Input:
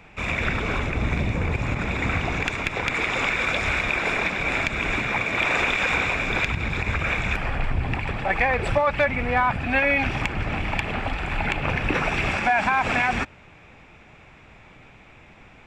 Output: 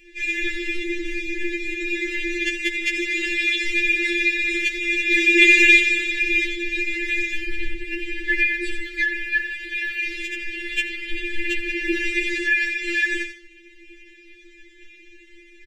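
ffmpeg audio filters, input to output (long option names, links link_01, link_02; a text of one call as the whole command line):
ffmpeg -i in.wav -filter_complex "[0:a]asuperstop=centerf=880:order=20:qfactor=0.74,asettb=1/sr,asplit=3[link_01][link_02][link_03];[link_01]atrim=end=5.114[link_04];[link_02]atrim=start=5.11:end=5.81,asetpts=PTS-STARTPTS,afade=type=in:duration=0.004:curve=qsin,afade=type=out:start_time=0.696:duration=0.004:curve=qsin,acontrast=84[link_05];[link_03]atrim=start=5.806[link_06];[link_04][link_05]acrossfade=duration=0.004:curve1=hsin:curve2=qsin[link_07];[link_07][link_06]acrossfade=duration=0.004:curve1=qsin:curve2=hsin,aecho=1:1:81|162|243|324:0.376|0.12|0.0385|0.0123,tremolo=f=33:d=0.857,asettb=1/sr,asplit=3[link_08][link_09][link_10];[link_08]atrim=end=9.224[link_11];[link_09]atrim=start=9.22:end=11.11,asetpts=PTS-STARTPTS,afade=type=in:duration=0.004:curve=qsin,afade=type=out:start_time=1.886:duration=0.004:curve=qsin,lowshelf=frequency=400:width_type=q:width=1.5:gain=-7.5[link_12];[link_10]atrim=start=11.106[link_13];[link_11][link_12]acrossfade=duration=0.004:curve1=hsin:curve2=qsin[link_14];[link_14][link_13]acrossfade=duration=0.004:curve1=qsin:curve2=hsin,afftfilt=real='re*4*eq(mod(b,16),0)':imag='im*4*eq(mod(b,16),0)':win_size=2048:overlap=0.75,volume=8.5dB" out.wav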